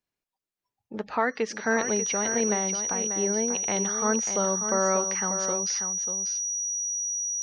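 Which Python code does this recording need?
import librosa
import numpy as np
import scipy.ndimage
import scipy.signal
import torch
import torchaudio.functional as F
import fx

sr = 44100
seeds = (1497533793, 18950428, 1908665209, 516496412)

y = fx.notch(x, sr, hz=5800.0, q=30.0)
y = fx.fix_echo_inverse(y, sr, delay_ms=590, level_db=-8.5)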